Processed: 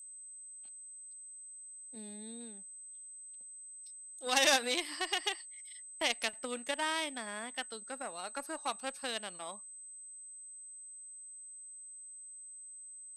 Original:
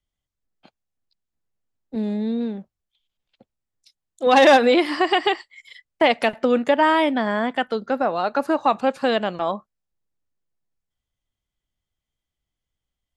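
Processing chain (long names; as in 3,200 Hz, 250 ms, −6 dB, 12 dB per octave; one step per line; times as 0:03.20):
steady tone 8,200 Hz −42 dBFS
harmonic generator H 3 −14 dB, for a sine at −3.5 dBFS
first-order pre-emphasis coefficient 0.9
level +2.5 dB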